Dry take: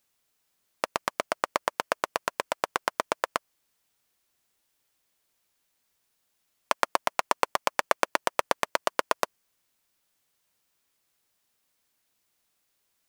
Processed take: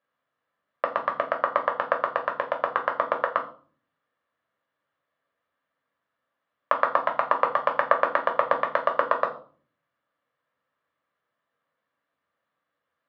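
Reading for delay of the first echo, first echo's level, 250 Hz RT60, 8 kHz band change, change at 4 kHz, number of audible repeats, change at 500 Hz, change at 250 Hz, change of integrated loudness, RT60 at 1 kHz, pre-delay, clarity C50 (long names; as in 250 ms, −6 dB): no echo audible, no echo audible, 0.70 s, below −30 dB, −9.5 dB, no echo audible, +5.0 dB, −1.0 dB, +4.0 dB, 0.40 s, 3 ms, 12.0 dB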